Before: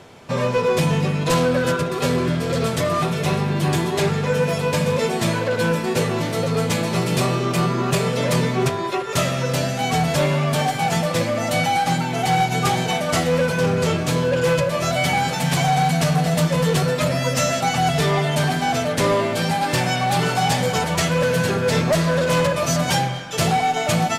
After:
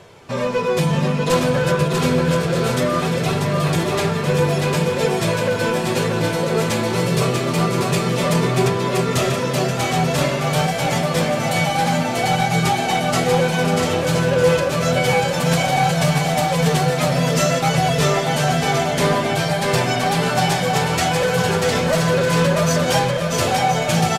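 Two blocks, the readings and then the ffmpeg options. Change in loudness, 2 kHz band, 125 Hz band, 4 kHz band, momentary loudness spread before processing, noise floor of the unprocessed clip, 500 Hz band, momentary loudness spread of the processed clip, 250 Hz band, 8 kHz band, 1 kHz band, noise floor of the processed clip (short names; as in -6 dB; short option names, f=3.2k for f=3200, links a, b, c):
+1.5 dB, +2.0 dB, +1.5 dB, +2.0 dB, 3 LU, -25 dBFS, +2.0 dB, 3 LU, +1.5 dB, +1.5 dB, +1.0 dB, -22 dBFS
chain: -af "flanger=delay=1.8:depth=4:regen=-41:speed=0.56:shape=sinusoidal,aecho=1:1:640|1024|1254|1393|1476:0.631|0.398|0.251|0.158|0.1,volume=3.5dB"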